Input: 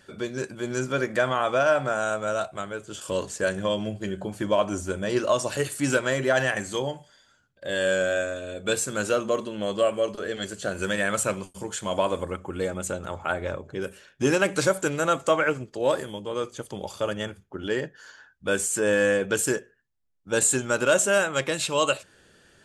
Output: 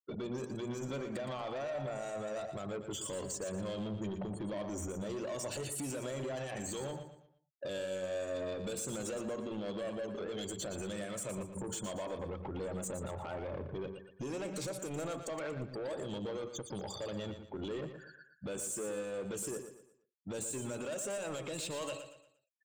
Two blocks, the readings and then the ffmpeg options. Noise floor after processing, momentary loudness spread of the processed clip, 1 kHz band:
-69 dBFS, 4 LU, -16.5 dB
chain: -filter_complex "[0:a]afftfilt=real='re*gte(hypot(re,im),0.0112)':imag='im*gte(hypot(re,im),0.0112)':win_size=1024:overlap=0.75,highpass=f=71:w=0.5412,highpass=f=71:w=1.3066,equalizer=f=1600:t=o:w=0.8:g=-11,acompressor=threshold=0.0316:ratio=6,alimiter=level_in=2.11:limit=0.0631:level=0:latency=1:release=83,volume=0.473,asoftclip=type=tanh:threshold=0.0119,asplit=2[s0][s1];[s1]aecho=0:1:117|234|351|468:0.355|0.124|0.0435|0.0152[s2];[s0][s2]amix=inputs=2:normalize=0,volume=1.5"

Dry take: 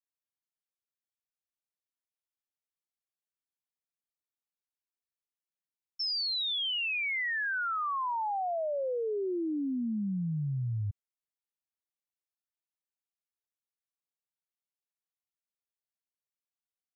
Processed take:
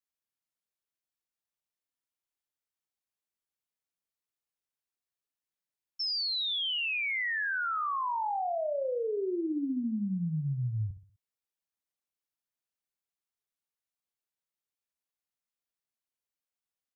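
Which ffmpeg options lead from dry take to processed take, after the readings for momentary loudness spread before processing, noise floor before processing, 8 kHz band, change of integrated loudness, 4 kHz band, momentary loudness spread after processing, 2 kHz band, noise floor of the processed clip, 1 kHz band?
5 LU, under -85 dBFS, no reading, +0.5 dB, 0.0 dB, 4 LU, +0.5 dB, under -85 dBFS, +0.5 dB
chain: -filter_complex "[0:a]asplit=2[s0][s1];[s1]adelay=63,lowpass=f=2700:p=1,volume=0.316,asplit=2[s2][s3];[s3]adelay=63,lowpass=f=2700:p=1,volume=0.38,asplit=2[s4][s5];[s5]adelay=63,lowpass=f=2700:p=1,volume=0.38,asplit=2[s6][s7];[s7]adelay=63,lowpass=f=2700:p=1,volume=0.38[s8];[s0][s2][s4][s6][s8]amix=inputs=5:normalize=0"

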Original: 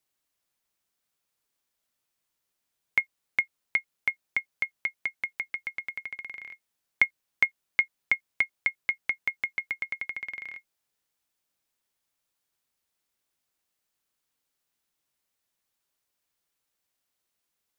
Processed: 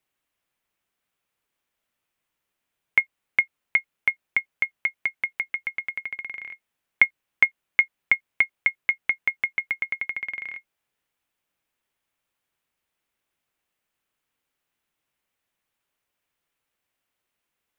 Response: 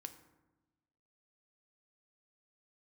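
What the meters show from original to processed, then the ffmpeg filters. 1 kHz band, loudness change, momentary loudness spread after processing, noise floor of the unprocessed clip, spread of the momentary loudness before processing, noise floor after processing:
+4.0 dB, +5.0 dB, 11 LU, -82 dBFS, 11 LU, -83 dBFS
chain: -af "highshelf=f=3500:t=q:w=1.5:g=-6,volume=1.5"

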